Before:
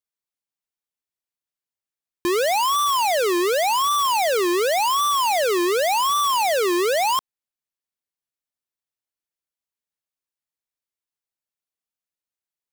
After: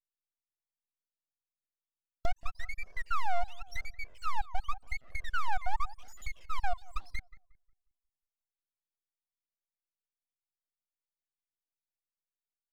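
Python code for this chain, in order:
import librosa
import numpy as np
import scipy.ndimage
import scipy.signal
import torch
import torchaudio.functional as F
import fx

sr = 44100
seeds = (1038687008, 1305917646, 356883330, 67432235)

y = fx.spec_dropout(x, sr, seeds[0], share_pct=68)
y = fx.env_lowpass_down(y, sr, base_hz=700.0, full_db=-24.5)
y = fx.peak_eq(y, sr, hz=7400.0, db=-9.5, octaves=0.61)
y = np.abs(y)
y = fx.echo_filtered(y, sr, ms=180, feedback_pct=36, hz=1400.0, wet_db=-19.0)
y = fx.comb_cascade(y, sr, direction='falling', hz=0.87)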